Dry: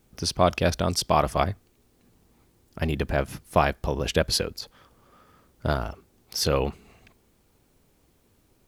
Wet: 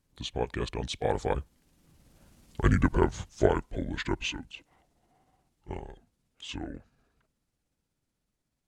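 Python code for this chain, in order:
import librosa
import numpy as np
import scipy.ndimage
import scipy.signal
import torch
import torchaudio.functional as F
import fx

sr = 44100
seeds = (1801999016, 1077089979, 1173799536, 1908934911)

y = fx.pitch_heads(x, sr, semitones=-7.5)
y = fx.doppler_pass(y, sr, speed_mps=26, closest_m=11.0, pass_at_s=2.5)
y = y * librosa.db_to_amplitude(5.5)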